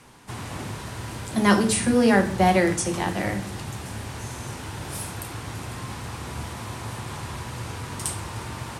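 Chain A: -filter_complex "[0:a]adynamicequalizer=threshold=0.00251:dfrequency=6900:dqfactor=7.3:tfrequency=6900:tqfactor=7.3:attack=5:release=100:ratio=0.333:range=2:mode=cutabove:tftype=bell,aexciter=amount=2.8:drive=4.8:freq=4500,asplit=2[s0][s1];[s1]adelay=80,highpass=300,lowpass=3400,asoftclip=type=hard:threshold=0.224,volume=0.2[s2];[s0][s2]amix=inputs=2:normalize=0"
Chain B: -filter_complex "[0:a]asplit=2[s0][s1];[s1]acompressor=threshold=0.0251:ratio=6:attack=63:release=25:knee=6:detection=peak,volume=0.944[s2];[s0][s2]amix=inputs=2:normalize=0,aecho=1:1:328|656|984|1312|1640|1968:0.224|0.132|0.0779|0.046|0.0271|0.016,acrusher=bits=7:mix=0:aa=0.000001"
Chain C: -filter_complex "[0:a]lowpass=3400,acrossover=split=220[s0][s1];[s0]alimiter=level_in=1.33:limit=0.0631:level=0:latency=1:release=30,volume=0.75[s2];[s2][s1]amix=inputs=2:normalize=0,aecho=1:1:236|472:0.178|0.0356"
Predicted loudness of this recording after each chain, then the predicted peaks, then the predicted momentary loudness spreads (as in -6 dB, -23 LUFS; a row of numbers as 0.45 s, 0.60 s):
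-24.0 LUFS, -22.5 LUFS, -27.5 LUFS; -3.0 dBFS, -4.0 dBFS, -8.5 dBFS; 14 LU, 12 LU, 15 LU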